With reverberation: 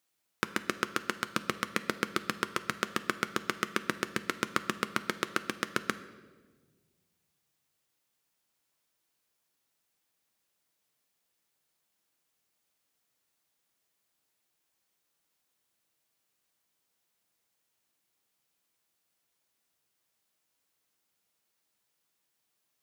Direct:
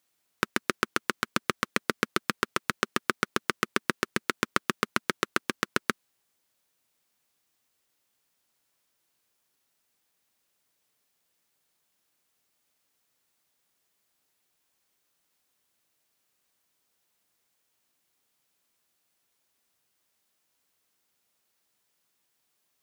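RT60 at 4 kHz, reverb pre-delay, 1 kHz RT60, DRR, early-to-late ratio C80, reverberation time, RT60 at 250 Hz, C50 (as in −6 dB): 1.0 s, 6 ms, 1.2 s, 10.5 dB, 15.5 dB, 1.5 s, 2.0 s, 14.0 dB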